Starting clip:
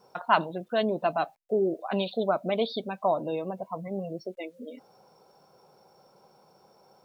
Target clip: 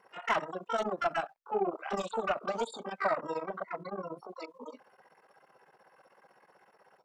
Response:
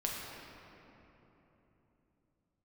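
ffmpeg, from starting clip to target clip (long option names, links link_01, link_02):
-filter_complex "[0:a]tremolo=f=16:d=0.92,asplit=2[link_01][link_02];[link_02]highpass=frequency=720:poles=1,volume=16dB,asoftclip=type=tanh:threshold=-10.5dB[link_03];[link_01][link_03]amix=inputs=2:normalize=0,lowpass=frequency=1200:poles=1,volume=-6dB,asplit=2[link_04][link_05];[link_05]asetrate=88200,aresample=44100,atempo=0.5,volume=-3dB[link_06];[link_04][link_06]amix=inputs=2:normalize=0,volume=-7dB"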